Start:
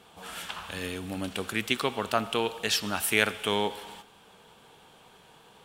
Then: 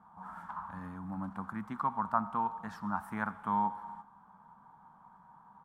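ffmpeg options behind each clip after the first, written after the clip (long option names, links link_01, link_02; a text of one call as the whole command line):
ffmpeg -i in.wav -af "firequalizer=gain_entry='entry(120,0);entry(190,8);entry(410,-17);entry(940,13);entry(2700,-29);entry(5100,-24)':delay=0.05:min_phase=1,volume=-7.5dB" out.wav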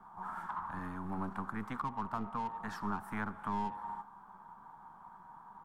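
ffmpeg -i in.wav -filter_complex "[0:a]acrossover=split=250|660[link_01][link_02][link_03];[link_01]aeval=exprs='max(val(0),0)':channel_layout=same[link_04];[link_02]aeval=exprs='(tanh(447*val(0)+0.65)-tanh(0.65))/447':channel_layout=same[link_05];[link_03]acompressor=threshold=-42dB:ratio=6[link_06];[link_04][link_05][link_06]amix=inputs=3:normalize=0,volume=5dB" out.wav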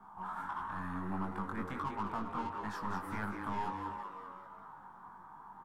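ffmpeg -i in.wav -filter_complex "[0:a]asplit=2[link_01][link_02];[link_02]asoftclip=type=tanh:threshold=-38.5dB,volume=-6dB[link_03];[link_01][link_03]amix=inputs=2:normalize=0,asplit=8[link_04][link_05][link_06][link_07][link_08][link_09][link_10][link_11];[link_05]adelay=195,afreqshift=89,volume=-7.5dB[link_12];[link_06]adelay=390,afreqshift=178,volume=-12.7dB[link_13];[link_07]adelay=585,afreqshift=267,volume=-17.9dB[link_14];[link_08]adelay=780,afreqshift=356,volume=-23.1dB[link_15];[link_09]adelay=975,afreqshift=445,volume=-28.3dB[link_16];[link_10]adelay=1170,afreqshift=534,volume=-33.5dB[link_17];[link_11]adelay=1365,afreqshift=623,volume=-38.7dB[link_18];[link_04][link_12][link_13][link_14][link_15][link_16][link_17][link_18]amix=inputs=8:normalize=0,flanger=delay=19.5:depth=2.4:speed=1.5" out.wav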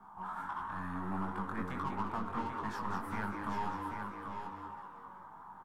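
ffmpeg -i in.wav -af "aecho=1:1:788:0.473" out.wav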